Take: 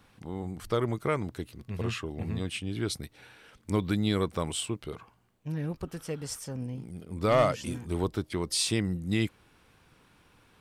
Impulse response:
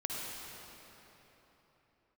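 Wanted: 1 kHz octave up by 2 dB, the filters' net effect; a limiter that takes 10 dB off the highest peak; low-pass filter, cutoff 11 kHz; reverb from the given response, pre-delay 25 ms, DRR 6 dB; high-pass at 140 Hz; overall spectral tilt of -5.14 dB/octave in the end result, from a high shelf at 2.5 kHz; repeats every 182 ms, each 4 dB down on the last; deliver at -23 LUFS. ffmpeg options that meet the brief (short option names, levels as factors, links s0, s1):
-filter_complex "[0:a]highpass=140,lowpass=11000,equalizer=f=1000:t=o:g=3.5,highshelf=f=2500:g=-4.5,alimiter=limit=0.1:level=0:latency=1,aecho=1:1:182|364|546|728|910|1092|1274|1456|1638:0.631|0.398|0.25|0.158|0.0994|0.0626|0.0394|0.0249|0.0157,asplit=2[s0][s1];[1:a]atrim=start_sample=2205,adelay=25[s2];[s1][s2]afir=irnorm=-1:irlink=0,volume=0.335[s3];[s0][s3]amix=inputs=2:normalize=0,volume=2.99"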